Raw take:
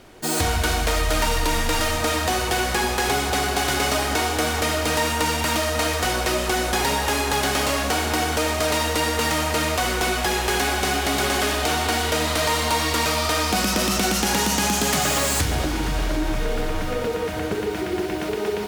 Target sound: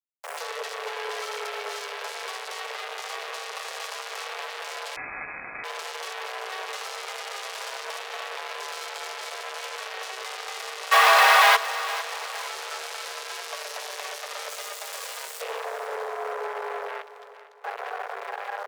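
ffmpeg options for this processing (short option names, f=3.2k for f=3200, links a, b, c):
-filter_complex "[0:a]afwtdn=0.0355,asplit=3[a][b][c];[a]afade=t=out:st=17.01:d=0.02[d];[b]highpass=930,afade=t=in:st=17.01:d=0.02,afade=t=out:st=17.63:d=0.02[e];[c]afade=t=in:st=17.63:d=0.02[f];[d][e][f]amix=inputs=3:normalize=0,alimiter=limit=-22.5dB:level=0:latency=1:release=19,asplit=3[g][h][i];[g]afade=t=out:st=10.91:d=0.02[j];[h]asplit=2[k][l];[l]highpass=f=720:p=1,volume=28dB,asoftclip=type=tanh:threshold=-1.5dB[m];[k][m]amix=inputs=2:normalize=0,lowpass=f=1.4k:p=1,volume=-6dB,afade=t=in:st=10.91:d=0.02,afade=t=out:st=11.55:d=0.02[n];[i]afade=t=in:st=11.55:d=0.02[o];[j][n][o]amix=inputs=3:normalize=0,acrusher=bits=3:mix=0:aa=0.5,afreqshift=390,aecho=1:1:455|910|1365|1820:0.188|0.0791|0.0332|0.014,asettb=1/sr,asplit=3[p][q][r];[p]atrim=end=4.964[s];[q]atrim=start=4.96:end=5.64,asetpts=PTS-STARTPTS,afade=t=in:d=0.004:c=qsin,afade=t=out:st=0.676:d=0.004:c=qsin,lowpass=f=2.6k:t=q:w=0.5098,lowpass=f=2.6k:t=q:w=0.6013,lowpass=f=2.6k:t=q:w=0.9,lowpass=f=2.6k:t=q:w=2.563,afreqshift=-3000[t];[r]atrim=start=5.636[u];[s][t]acrossfade=d=0.004:c1=hsin:c2=qsin[v];[v][u]acrossfade=d=0.004:c1=qsin:c2=hsin"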